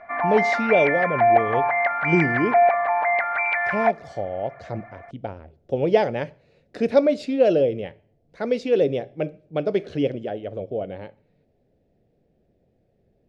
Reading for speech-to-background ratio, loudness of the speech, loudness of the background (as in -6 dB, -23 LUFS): -3.0 dB, -24.0 LUFS, -21.0 LUFS